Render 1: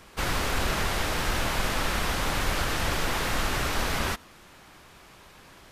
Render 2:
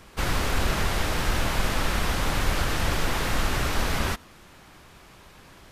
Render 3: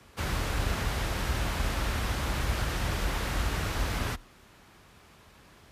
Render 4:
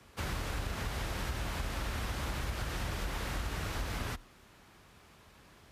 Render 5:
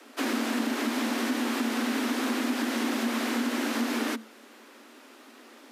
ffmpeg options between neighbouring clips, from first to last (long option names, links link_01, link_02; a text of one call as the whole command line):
ffmpeg -i in.wav -af "lowshelf=frequency=260:gain=4.5" out.wav
ffmpeg -i in.wav -af "afreqshift=32,volume=-6dB" out.wav
ffmpeg -i in.wav -af "acompressor=threshold=-29dB:ratio=6,volume=-3dB" out.wav
ffmpeg -i in.wav -af "afreqshift=190,volume=7.5dB" out.wav